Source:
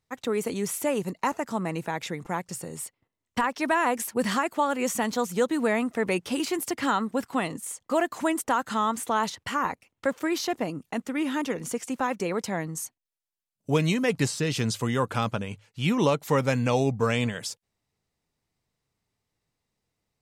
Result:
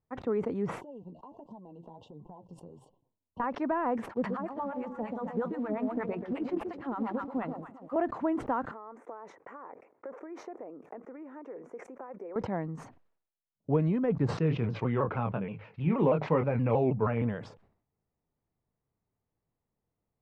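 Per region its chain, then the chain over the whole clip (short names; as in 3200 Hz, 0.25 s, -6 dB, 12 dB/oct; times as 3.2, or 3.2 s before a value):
0.81–3.4 brick-wall FIR band-stop 1100–2700 Hz + compressor 16:1, threshold -37 dBFS + flange 1.4 Hz, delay 4.9 ms, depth 8.2 ms, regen +31%
4.08–7.96 echo with dull and thin repeats by turns 0.133 s, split 850 Hz, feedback 63%, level -6 dB + harmonic tremolo 8.5 Hz, depth 100%, crossover 750 Hz + short-mantissa float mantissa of 2-bit
8.71–12.36 band shelf 3700 Hz -14 dB 1 oct + compressor 20:1, threshold -37 dBFS + resonant high-pass 430 Hz, resonance Q 1.9
14.37–17.22 speaker cabinet 110–5600 Hz, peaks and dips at 160 Hz +3 dB, 250 Hz -4 dB, 2400 Hz +9 dB + doubler 25 ms -7 dB + shaped vibrato saw down 6.3 Hz, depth 160 cents
whole clip: de-esser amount 100%; LPF 1100 Hz 12 dB/oct; sustainer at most 99 dB/s; gain -2.5 dB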